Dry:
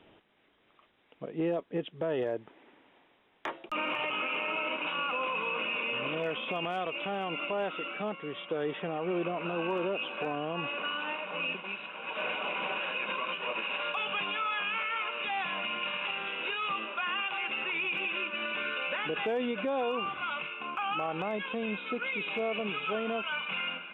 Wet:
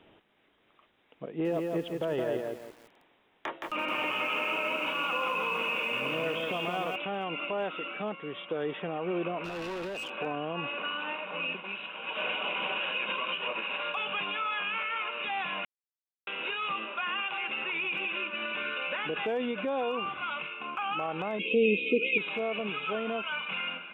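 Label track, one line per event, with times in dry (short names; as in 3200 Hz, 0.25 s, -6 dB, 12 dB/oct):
1.280000	6.960000	lo-fi delay 0.169 s, feedback 35%, word length 9-bit, level -3 dB
9.440000	10.100000	hard clip -34 dBFS
11.750000	13.480000	bell 3100 Hz +6 dB 0.38 oct
15.650000	16.270000	mute
21.390000	22.180000	EQ curve 130 Hz 0 dB, 450 Hz +14 dB, 800 Hz -20 dB, 1700 Hz -29 dB, 2400 Hz +11 dB, 4400 Hz -2 dB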